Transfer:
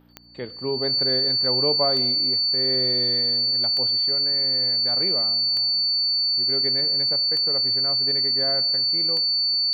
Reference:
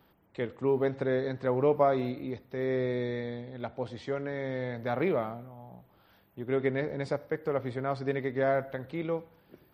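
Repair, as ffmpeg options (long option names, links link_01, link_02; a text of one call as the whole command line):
ffmpeg -i in.wav -af "adeclick=threshold=4,bandreject=frequency=59.1:width_type=h:width=4,bandreject=frequency=118.2:width_type=h:width=4,bandreject=frequency=177.3:width_type=h:width=4,bandreject=frequency=236.4:width_type=h:width=4,bandreject=frequency=295.5:width_type=h:width=4,bandreject=frequency=4500:width=30,asetnsamples=nb_out_samples=441:pad=0,asendcmd='3.91 volume volume 4dB',volume=0dB" out.wav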